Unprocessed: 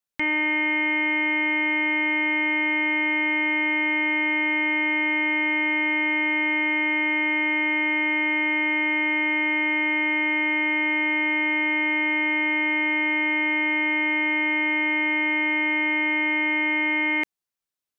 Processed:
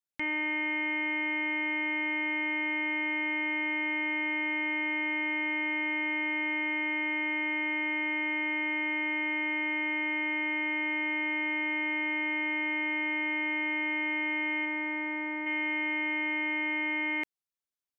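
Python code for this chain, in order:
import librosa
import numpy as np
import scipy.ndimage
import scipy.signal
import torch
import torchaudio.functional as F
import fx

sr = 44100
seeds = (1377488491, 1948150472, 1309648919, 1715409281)

y = fx.lowpass(x, sr, hz=fx.line((14.65, 2400.0), (15.45, 1600.0)), slope=12, at=(14.65, 15.45), fade=0.02)
y = F.gain(torch.from_numpy(y), -8.0).numpy()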